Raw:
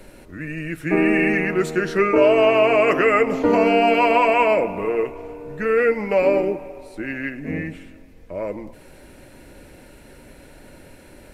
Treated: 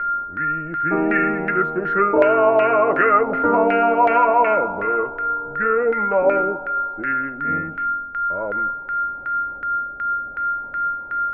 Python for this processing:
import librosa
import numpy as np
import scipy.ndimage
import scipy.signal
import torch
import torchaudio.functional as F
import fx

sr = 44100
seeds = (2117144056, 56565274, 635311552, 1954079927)

y = fx.spec_erase(x, sr, start_s=9.58, length_s=0.76, low_hz=880.0, high_hz=6700.0)
y = y + 10.0 ** (-24.0 / 20.0) * np.sin(2.0 * np.pi * 1400.0 * np.arange(len(y)) / sr)
y = fx.filter_lfo_lowpass(y, sr, shape='saw_down', hz=2.7, low_hz=770.0, high_hz=1900.0, q=3.1)
y = y * librosa.db_to_amplitude(-3.5)